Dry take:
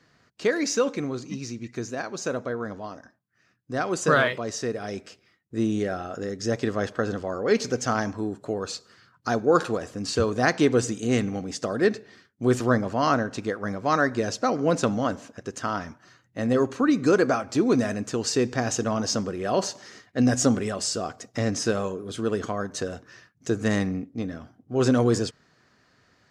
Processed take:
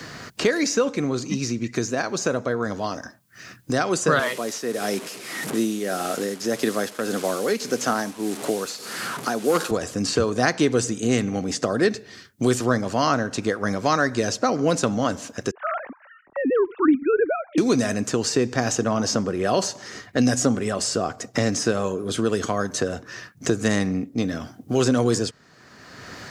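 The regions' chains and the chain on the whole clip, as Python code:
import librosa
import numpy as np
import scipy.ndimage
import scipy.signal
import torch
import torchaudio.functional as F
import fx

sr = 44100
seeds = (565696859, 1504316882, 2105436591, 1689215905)

y = fx.chain(x, sr, fx.delta_mod(bps=64000, step_db=-37.0),
    fx.highpass(hz=180.0, slope=24),
    fx.tremolo_shape(shape='triangle', hz=1.7, depth_pct=70), at=(4.19, 9.71))
y = fx.chain(y, sr, fx.sine_speech(),
    fx.lowpass(hz=1300.0, slope=12), at=(15.51, 17.58))
y = fx.high_shelf(y, sr, hz=5500.0, db=8.0)
y = fx.band_squash(y, sr, depth_pct=70)
y = y * librosa.db_to_amplitude(2.5)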